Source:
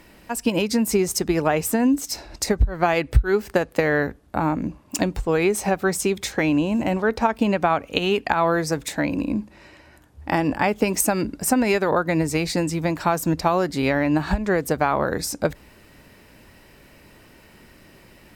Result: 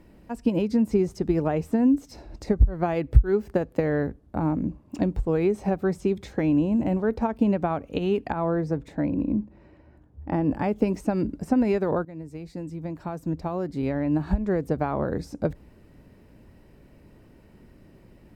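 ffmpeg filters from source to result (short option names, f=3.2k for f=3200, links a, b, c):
-filter_complex "[0:a]asettb=1/sr,asplit=3[a][b][c];[a]atrim=end=8.324[d];[b]atrim=start=8.32:end=10.51,asetpts=PTS-STARTPTS,afade=t=in:d=0.004:c=qsin,afade=t=out:st=2.186:d=0.004:c=qsin,lowpass=f=2k:p=1[e];[c]atrim=start=10.506[f];[d][e]acrossfade=d=0.004:c1=hsin:c2=qsin[g];[g][f]acrossfade=d=0.004:c1=qsin:c2=hsin,asplit=2[h][i];[h]atrim=end=12.05,asetpts=PTS-STARTPTS,afade=t=out:st=12.046:d=0.004:c=hsin:silence=0.125893[j];[i]atrim=start=12.05,asetpts=PTS-STARTPTS,afade=t=in:d=2.74:silence=0.125893[k];[j][k]concat=n=2:v=0:a=1,acrossover=split=5300[l][m];[m]acompressor=threshold=-39dB:ratio=4:attack=1:release=60[n];[l][n]amix=inputs=2:normalize=0,tiltshelf=f=790:g=8.5,volume=-7.5dB"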